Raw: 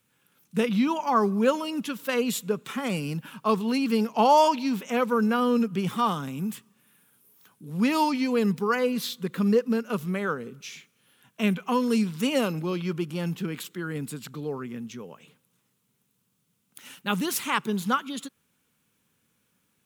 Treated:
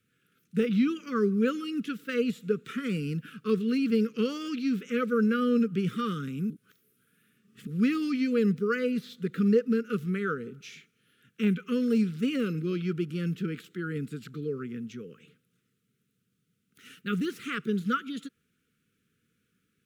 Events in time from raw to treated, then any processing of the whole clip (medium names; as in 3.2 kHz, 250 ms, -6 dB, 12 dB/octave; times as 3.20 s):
6.50–7.67 s: reverse
whole clip: elliptic band-stop 470–1300 Hz, stop band 40 dB; de-esser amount 85%; treble shelf 4.2 kHz -11.5 dB